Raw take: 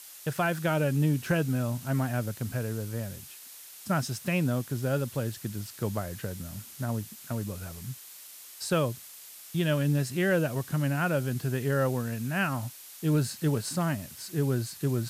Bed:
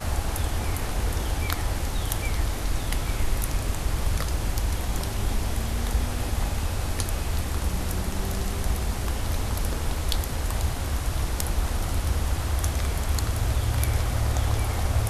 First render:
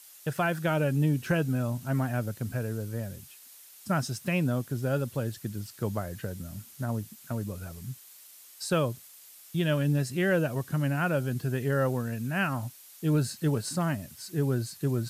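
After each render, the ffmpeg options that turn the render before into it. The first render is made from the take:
-af "afftdn=nr=6:nf=-48"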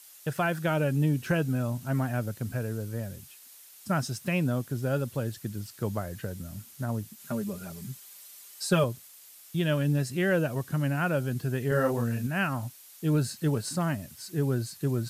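-filter_complex "[0:a]asettb=1/sr,asplit=3[a][b][c];[a]atrim=end=7.194[d];[b]atrim=start=7.19:end=8.84,asetpts=PTS-STARTPTS,afade=t=in:d=0.004:c=qsin,afade=t=out:st=1.646:d=0.004:c=qsin,aecho=1:1:5:0.88,atrim=end_sample=72765[e];[c]atrim=start=8.836[f];[d][e]acrossfade=d=0.004:c1=hsin:c2=qsin[g];[g][f]acrossfade=d=0.004:c1=qsin:c2=hsin,asettb=1/sr,asplit=3[h][i][j];[h]atrim=end=11.684[k];[i]atrim=start=11.68:end=12.27,asetpts=PTS-STARTPTS,afade=t=in:d=0.004:c=qsin,afade=t=out:st=0.586:d=0.004:c=qsin,asplit=2[l][m];[m]adelay=34,volume=-3dB[n];[l][n]amix=inputs=2:normalize=0,atrim=end_sample=26019[o];[j]atrim=start=12.266[p];[k][o]acrossfade=d=0.004:c1=hsin:c2=qsin[q];[q][p]acrossfade=d=0.004:c1=qsin:c2=hsin"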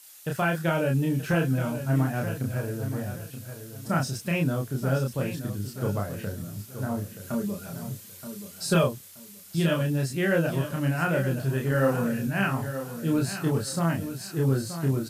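-filter_complex "[0:a]asplit=2[a][b];[b]adelay=30,volume=-2dB[c];[a][c]amix=inputs=2:normalize=0,asplit=2[d][e];[e]aecho=0:1:926|1852|2778:0.299|0.0806|0.0218[f];[d][f]amix=inputs=2:normalize=0"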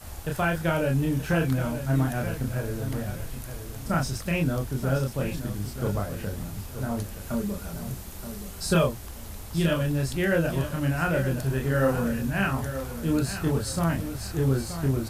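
-filter_complex "[1:a]volume=-13.5dB[a];[0:a][a]amix=inputs=2:normalize=0"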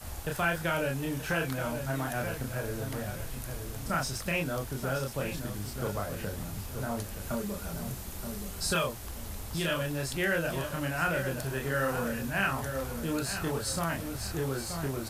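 -filter_complex "[0:a]acrossover=split=440|1100[a][b][c];[a]acompressor=threshold=-34dB:ratio=6[d];[b]alimiter=level_in=5dB:limit=-24dB:level=0:latency=1,volume=-5dB[e];[d][e][c]amix=inputs=3:normalize=0"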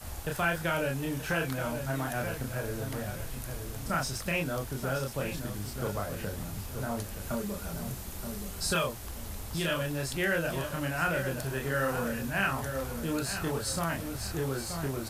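-af anull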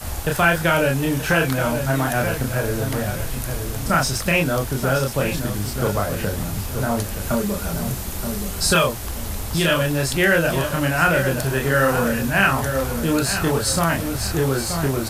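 -af "volume=12dB"

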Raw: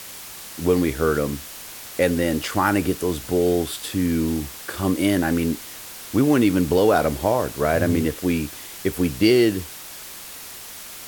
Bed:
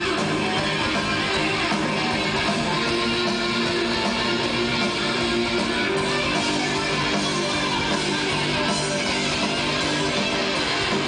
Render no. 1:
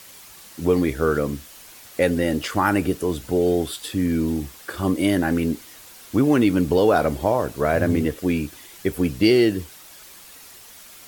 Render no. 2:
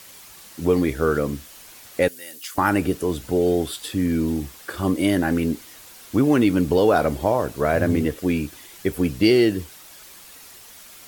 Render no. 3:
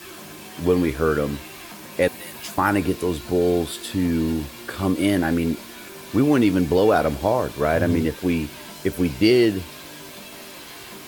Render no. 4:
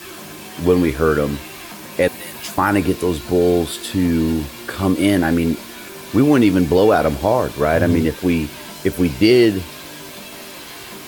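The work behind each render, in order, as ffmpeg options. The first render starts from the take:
-af "afftdn=nr=8:nf=-38"
-filter_complex "[0:a]asettb=1/sr,asplit=3[a][b][c];[a]atrim=end=2.084[d];[b]atrim=start=2.08:end=2.58,asetpts=PTS-STARTPTS,afade=t=in:d=0.004:c=qsin,afade=t=out:st=0.496:d=0.004:c=qsin,aderivative[e];[c]atrim=start=2.576[f];[d][e]acrossfade=d=0.004:c1=hsin:c2=qsin[g];[g][f]acrossfade=d=0.004:c1=qsin:c2=hsin"
-filter_complex "[1:a]volume=-18dB[a];[0:a][a]amix=inputs=2:normalize=0"
-af "volume=4.5dB,alimiter=limit=-3dB:level=0:latency=1"

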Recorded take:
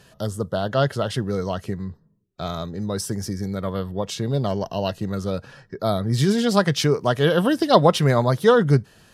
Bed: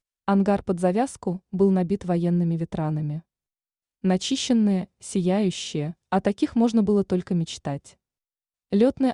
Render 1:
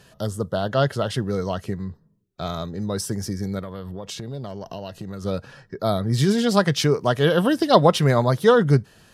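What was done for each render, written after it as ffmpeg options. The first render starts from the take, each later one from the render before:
-filter_complex "[0:a]asettb=1/sr,asplit=3[a][b][c];[a]atrim=end=3.594[d];[b]atrim=start=3.59:end=5.25,asetpts=PTS-STARTPTS,afade=t=in:d=0.004:c=qsin,afade=t=out:st=1.656:d=0.004:c=qsin,acompressor=threshold=-29dB:ratio=6:attack=3.2:release=140:knee=1:detection=peak[e];[c]atrim=start=5.246[f];[d][e]acrossfade=d=0.004:c1=hsin:c2=qsin[g];[g][f]acrossfade=d=0.004:c1=qsin:c2=hsin"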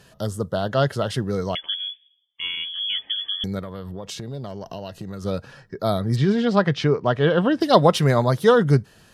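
-filter_complex "[0:a]asettb=1/sr,asplit=3[a][b][c];[a]atrim=end=1.554[d];[b]atrim=start=1.55:end=3.44,asetpts=PTS-STARTPTS,afade=t=in:d=0.004:c=qsin,afade=t=out:st=1.886:d=0.004:c=qsin,lowpass=f=3k:t=q:w=0.5098,lowpass=f=3k:t=q:w=0.6013,lowpass=f=3k:t=q:w=0.9,lowpass=f=3k:t=q:w=2.563,afreqshift=-3500[e];[c]atrim=start=3.436[f];[d][e]acrossfade=d=0.004:c1=hsin:c2=qsin[g];[g][f]acrossfade=d=0.004:c1=qsin:c2=hsin,asplit=3[h][i][j];[h]afade=t=out:st=6.15:d=0.02[k];[i]lowpass=3k,afade=t=in:st=6.15:d=0.02,afade=t=out:st=7.6:d=0.02[l];[j]afade=t=in:st=7.6:d=0.02[m];[k][l][m]amix=inputs=3:normalize=0"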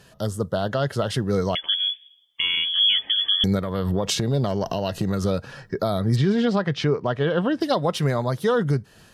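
-af "dynaudnorm=f=500:g=3:m=12dB,alimiter=limit=-12dB:level=0:latency=1:release=316"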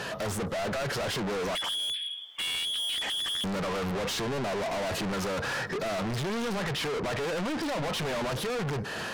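-filter_complex "[0:a]asplit=2[a][b];[b]highpass=f=720:p=1,volume=33dB,asoftclip=type=tanh:threshold=-11.5dB[c];[a][c]amix=inputs=2:normalize=0,lowpass=f=1.6k:p=1,volume=-6dB,asoftclip=type=tanh:threshold=-30dB"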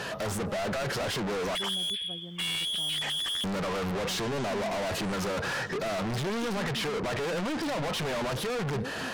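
-filter_complex "[1:a]volume=-21.5dB[a];[0:a][a]amix=inputs=2:normalize=0"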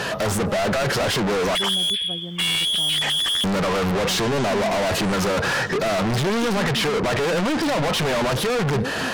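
-af "volume=9.5dB"

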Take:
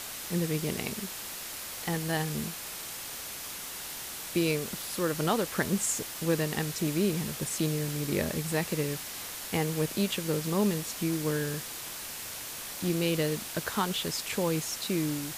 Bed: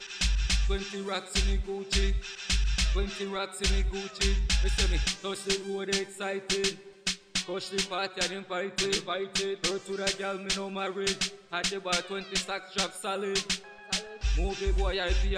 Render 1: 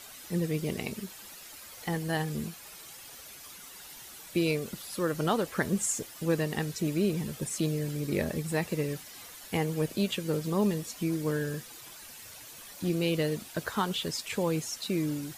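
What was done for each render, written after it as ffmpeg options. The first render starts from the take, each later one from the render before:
-af "afftdn=nr=11:nf=-40"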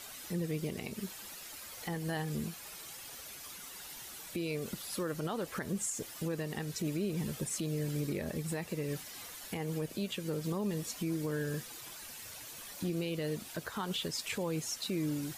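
-af "alimiter=level_in=2dB:limit=-24dB:level=0:latency=1:release=190,volume=-2dB"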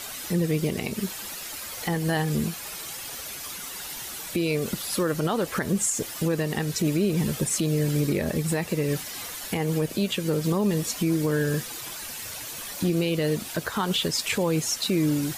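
-af "volume=11dB"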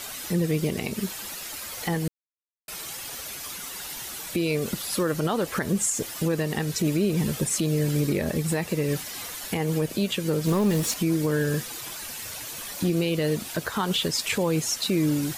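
-filter_complex "[0:a]asettb=1/sr,asplit=3[a][b][c];[a]atrim=end=10.474[d];[b]atrim=start=10.47:end=10.94,asetpts=PTS-STARTPTS,afade=t=in:d=0.004:c=qsin,afade=t=out:st=0.466:d=0.004:c=qsin,aeval=exprs='val(0)+0.5*0.0316*sgn(val(0))':c=same[e];[c]atrim=start=10.936[f];[d][e]acrossfade=d=0.004:c1=hsin:c2=qsin[g];[g][f]acrossfade=d=0.004:c1=qsin:c2=hsin,asplit=3[h][i][j];[h]atrim=end=2.08,asetpts=PTS-STARTPTS,afade=t=out:st=2.076:d=0.004:c=hsin[k];[i]atrim=start=2.08:end=2.68,asetpts=PTS-STARTPTS,volume=0[l];[j]atrim=start=2.68,asetpts=PTS-STARTPTS,afade=t=in:d=0.004:c=hsin[m];[k][l][m]concat=n=3:v=0:a=1"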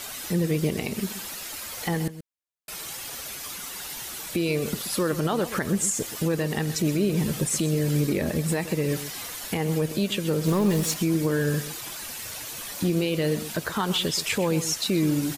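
-filter_complex "[0:a]asplit=2[a][b];[b]adelay=128.3,volume=-13dB,highshelf=f=4k:g=-2.89[c];[a][c]amix=inputs=2:normalize=0"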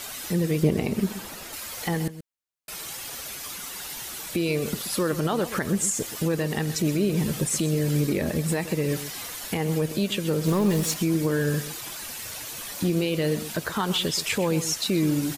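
-filter_complex "[0:a]asettb=1/sr,asplit=3[a][b][c];[a]atrim=end=0.634[d];[b]atrim=start=0.63:end=1.53,asetpts=PTS-STARTPTS,afade=t=in:d=0.004:c=qsin,afade=t=out:st=0.896:d=0.004:c=qsin,tiltshelf=f=1.5k:g=5[e];[c]atrim=start=1.526[f];[d][e]acrossfade=d=0.004:c1=hsin:c2=qsin[g];[g][f]acrossfade=d=0.004:c1=qsin:c2=hsin"

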